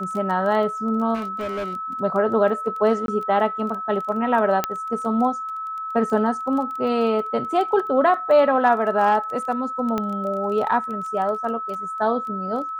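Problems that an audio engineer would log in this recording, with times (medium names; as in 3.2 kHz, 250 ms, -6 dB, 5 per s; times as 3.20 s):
crackle 15 per s -29 dBFS
whine 1.3 kHz -27 dBFS
1.14–1.76 s: clipped -24 dBFS
3.06–3.08 s: dropout 22 ms
4.64 s: pop -6 dBFS
9.98 s: pop -12 dBFS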